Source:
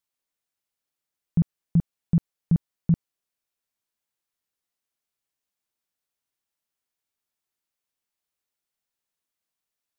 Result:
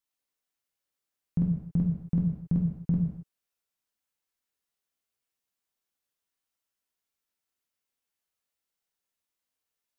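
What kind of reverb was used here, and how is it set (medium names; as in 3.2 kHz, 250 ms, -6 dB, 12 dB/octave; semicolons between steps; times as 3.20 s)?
gated-style reverb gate 300 ms falling, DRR -1.5 dB; trim -4.5 dB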